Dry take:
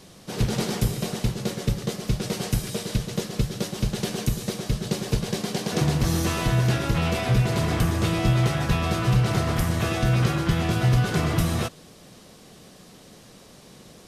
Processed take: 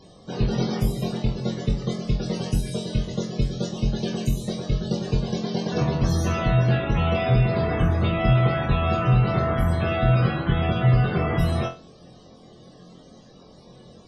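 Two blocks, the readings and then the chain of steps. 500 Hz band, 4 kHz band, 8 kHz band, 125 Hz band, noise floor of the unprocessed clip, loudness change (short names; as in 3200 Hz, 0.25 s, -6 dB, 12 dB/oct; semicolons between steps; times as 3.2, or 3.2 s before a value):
+3.0 dB, -3.5 dB, -9.0 dB, +1.5 dB, -49 dBFS, +1.0 dB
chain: loudest bins only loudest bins 64; flutter echo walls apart 3.9 m, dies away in 0.28 s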